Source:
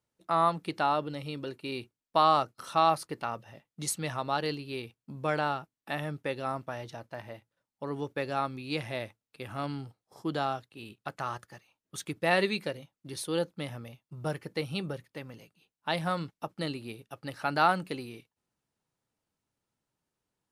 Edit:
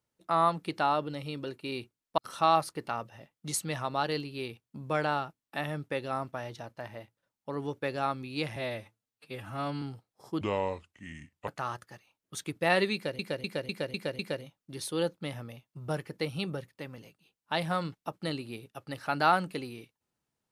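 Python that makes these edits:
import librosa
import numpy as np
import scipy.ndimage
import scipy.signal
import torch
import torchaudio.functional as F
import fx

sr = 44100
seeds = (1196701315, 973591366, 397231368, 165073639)

y = fx.edit(x, sr, fx.cut(start_s=2.18, length_s=0.34),
    fx.stretch_span(start_s=8.9, length_s=0.84, factor=1.5),
    fx.speed_span(start_s=10.33, length_s=0.76, speed=0.71),
    fx.repeat(start_s=12.55, length_s=0.25, count=6), tone=tone)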